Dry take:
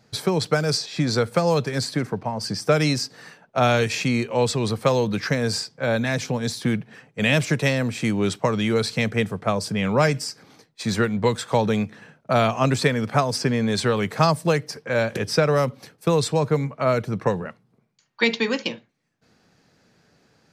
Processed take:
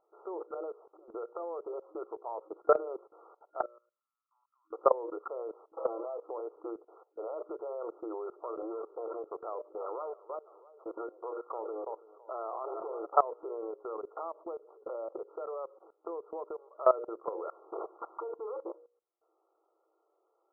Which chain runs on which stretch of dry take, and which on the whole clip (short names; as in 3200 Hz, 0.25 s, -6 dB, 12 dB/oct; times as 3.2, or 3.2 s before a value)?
0.54–1.96 high shelf 2100 Hz -7.5 dB + compressor 12:1, threshold -23 dBFS
3.62–4.73 inverse Chebyshev band-stop 110–560 Hz, stop band 70 dB + level quantiser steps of 12 dB
5.73–6.18 zero-crossing step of -30.5 dBFS + comb 6.1 ms, depth 96%
8.26–13.07 air absorption 160 m + thinning echo 0.331 s, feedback 48%, high-pass 160 Hz, level -16 dB + core saturation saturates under 560 Hz
13.71–16.74 compressor 5:1, threshold -29 dBFS + high shelf 2600 Hz -8 dB
17.47–18.37 notches 50/100/150/200/250/300 Hz + backwards sustainer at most 25 dB/s
whole clip: FFT band-pass 320–1400 Hz; notches 60/120/180/240/300/360/420/480/540/600 Hz; level quantiser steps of 19 dB